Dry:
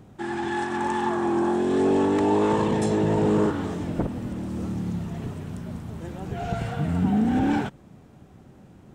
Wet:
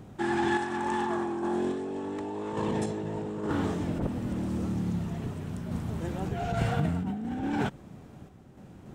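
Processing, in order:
compressor whose output falls as the input rises −26 dBFS, ratio −1
sample-and-hold tremolo

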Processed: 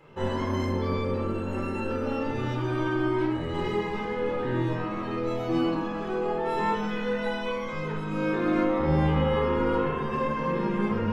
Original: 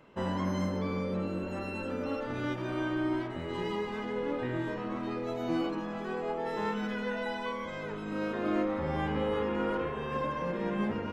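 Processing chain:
rectangular room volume 1,000 cubic metres, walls furnished, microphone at 4.1 metres

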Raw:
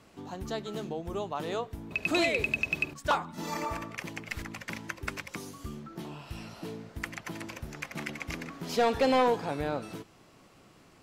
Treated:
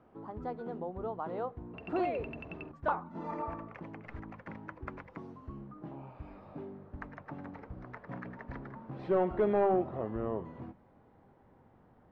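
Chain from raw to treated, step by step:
gliding playback speed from 113% → 69%
Chebyshev low-pass filter 1,000 Hz, order 2
mains-hum notches 50/100/150/200 Hz
level −2.5 dB

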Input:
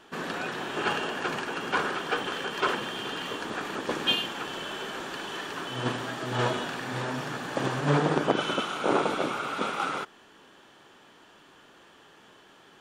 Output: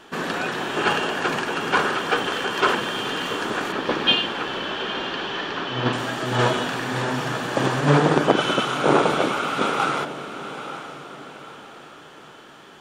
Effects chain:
0:03.72–0:05.93: low-pass filter 5,000 Hz 24 dB per octave
feedback delay with all-pass diffusion 875 ms, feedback 41%, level −11.5 dB
level +7 dB

